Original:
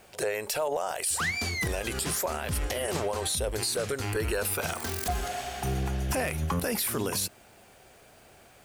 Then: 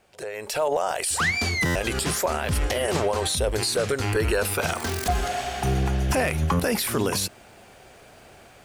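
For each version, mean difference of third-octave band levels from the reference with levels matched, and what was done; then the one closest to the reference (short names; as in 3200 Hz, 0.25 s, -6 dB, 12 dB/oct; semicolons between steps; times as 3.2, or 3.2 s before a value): 2.0 dB: high shelf 10000 Hz -10 dB; AGC gain up to 13 dB; stuck buffer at 1.65, samples 512, times 8; gain -6.5 dB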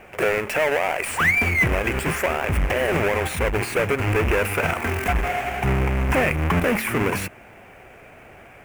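5.5 dB: half-waves squared off; resonant high shelf 3100 Hz -9 dB, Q 3; de-hum 73.67 Hz, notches 3; gain +4 dB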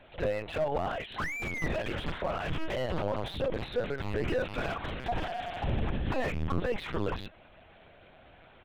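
8.5 dB: comb 6.1 ms, depth 35%; LPC vocoder at 8 kHz pitch kept; slew limiter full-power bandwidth 37 Hz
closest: first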